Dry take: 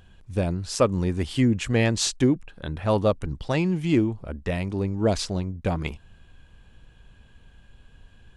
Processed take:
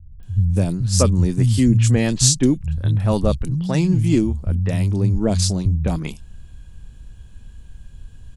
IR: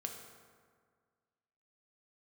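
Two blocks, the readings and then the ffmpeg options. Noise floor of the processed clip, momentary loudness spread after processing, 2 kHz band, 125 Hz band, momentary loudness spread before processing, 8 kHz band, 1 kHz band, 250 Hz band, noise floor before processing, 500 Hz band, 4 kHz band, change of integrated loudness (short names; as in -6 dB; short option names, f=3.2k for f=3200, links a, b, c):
-42 dBFS, 7 LU, -1.0 dB, +10.0 dB, 8 LU, +11.0 dB, -1.0 dB, +5.0 dB, -54 dBFS, +0.5 dB, +5.5 dB, +6.5 dB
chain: -filter_complex "[0:a]bass=f=250:g=14,treble=f=4k:g=14,acrossover=split=150|3000[a][b][c];[b]adelay=200[d];[c]adelay=230[e];[a][d][e]amix=inputs=3:normalize=0,volume=-1dB"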